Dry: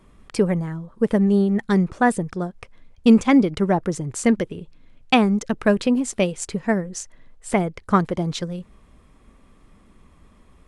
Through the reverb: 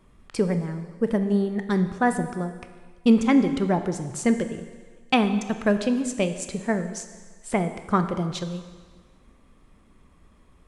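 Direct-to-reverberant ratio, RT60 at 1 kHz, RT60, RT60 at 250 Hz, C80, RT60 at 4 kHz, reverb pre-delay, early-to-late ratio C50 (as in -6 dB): 8.5 dB, 1.5 s, 1.5 s, 1.3 s, 11.5 dB, 1.5 s, 14 ms, 10.5 dB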